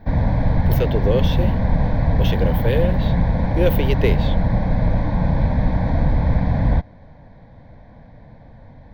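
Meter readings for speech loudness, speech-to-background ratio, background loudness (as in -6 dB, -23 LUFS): -24.5 LUFS, -4.5 dB, -20.0 LUFS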